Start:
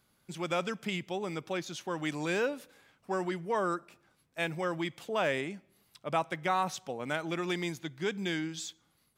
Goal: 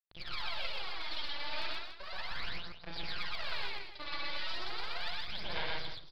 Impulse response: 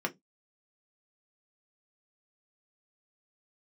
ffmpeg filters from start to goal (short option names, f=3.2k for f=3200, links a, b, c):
-filter_complex "[0:a]afftfilt=real='re':imag='-im':win_size=8192:overlap=0.75,aresample=16000,asoftclip=type=hard:threshold=-38.5dB,aresample=44100,afftfilt=real='re*lt(hypot(re,im),0.0251)':imag='im*lt(hypot(re,im),0.0251)':win_size=1024:overlap=0.75,atempo=1.5,acrusher=bits=6:dc=4:mix=0:aa=0.000001,equalizer=f=230:w=0.79:g=-9.5,aresample=11025,aresample=44100,equalizer=f=4.1k:w=2.8:g=6.5,bandreject=f=50:t=h:w=6,bandreject=f=100:t=h:w=6,aphaser=in_gain=1:out_gain=1:delay=3.5:decay=0.75:speed=0.35:type=sinusoidal,asplit=2[a][b];[b]aecho=0:1:125.4|285.7:0.891|0.282[c];[a][c]amix=inputs=2:normalize=0,volume=6.5dB"